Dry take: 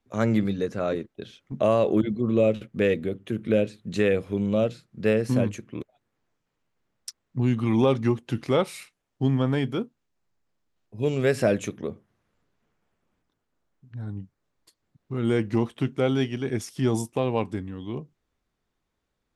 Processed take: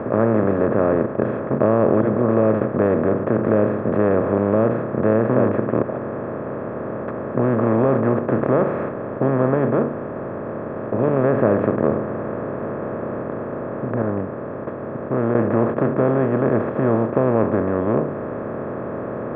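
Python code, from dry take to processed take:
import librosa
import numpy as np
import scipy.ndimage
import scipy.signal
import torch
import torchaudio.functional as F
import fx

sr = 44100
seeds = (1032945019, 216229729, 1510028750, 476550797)

y = fx.edit(x, sr, fx.clip_gain(start_s=14.02, length_s=1.33, db=-9.5), tone=tone)
y = fx.bin_compress(y, sr, power=0.2)
y = scipy.signal.sosfilt(scipy.signal.butter(4, 1500.0, 'lowpass', fs=sr, output='sos'), y)
y = F.gain(torch.from_numpy(y), -2.0).numpy()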